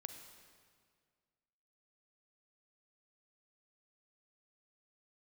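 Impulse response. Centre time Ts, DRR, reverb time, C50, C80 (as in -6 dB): 34 ms, 6.0 dB, 1.9 s, 7.0 dB, 8.0 dB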